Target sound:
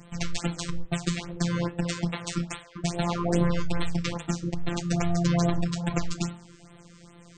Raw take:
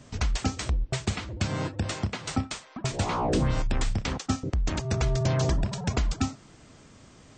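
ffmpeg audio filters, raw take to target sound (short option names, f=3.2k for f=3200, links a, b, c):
-af "equalizer=f=100:w=5.3:g=12.5,afftfilt=real='hypot(re,im)*cos(PI*b)':imag='0':win_size=1024:overlap=0.75,flanger=delay=9.3:depth=7.6:regen=-82:speed=0.56:shape=sinusoidal,afftfilt=real='re*(1-between(b*sr/1024,680*pow(6200/680,0.5+0.5*sin(2*PI*2.4*pts/sr))/1.41,680*pow(6200/680,0.5+0.5*sin(2*PI*2.4*pts/sr))*1.41))':imag='im*(1-between(b*sr/1024,680*pow(6200/680,0.5+0.5*sin(2*PI*2.4*pts/sr))/1.41,680*pow(6200/680,0.5+0.5*sin(2*PI*2.4*pts/sr))*1.41))':win_size=1024:overlap=0.75,volume=9dB"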